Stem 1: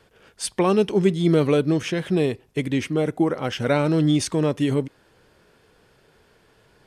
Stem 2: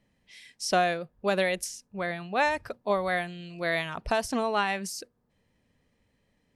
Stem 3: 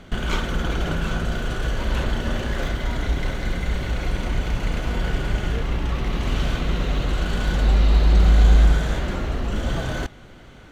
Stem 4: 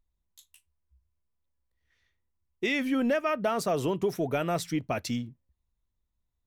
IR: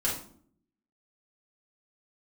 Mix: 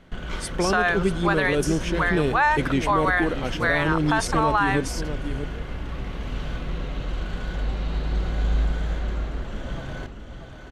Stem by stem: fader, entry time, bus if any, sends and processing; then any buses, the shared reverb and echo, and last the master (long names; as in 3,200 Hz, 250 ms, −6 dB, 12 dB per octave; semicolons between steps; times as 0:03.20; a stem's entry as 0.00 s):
−10.0 dB, 0.00 s, no send, echo send −10.5 dB, automatic gain control gain up to 11.5 dB
+2.0 dB, 0.00 s, no send, no echo send, meter weighting curve A; flat-topped bell 1,200 Hz +11.5 dB 1.3 octaves
−9.5 dB, 0.00 s, send −16 dB, echo send −6 dB, high-shelf EQ 7,100 Hz −10 dB
−17.0 dB, 0.00 s, no send, no echo send, no processing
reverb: on, RT60 0.55 s, pre-delay 4 ms
echo: single-tap delay 639 ms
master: brickwall limiter −11 dBFS, peak gain reduction 9 dB